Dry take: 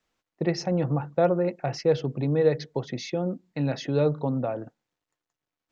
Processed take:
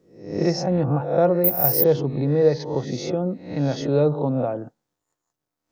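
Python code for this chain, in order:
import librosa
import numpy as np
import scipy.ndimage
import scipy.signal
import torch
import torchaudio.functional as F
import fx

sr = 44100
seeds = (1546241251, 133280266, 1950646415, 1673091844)

y = fx.spec_swells(x, sr, rise_s=0.56)
y = fx.resample_bad(y, sr, factor=3, down='none', up='zero_stuff', at=(1.44, 1.84))
y = fx.peak_eq(y, sr, hz=2500.0, db=-8.5, octaves=1.5)
y = y * 10.0 ** (3.5 / 20.0)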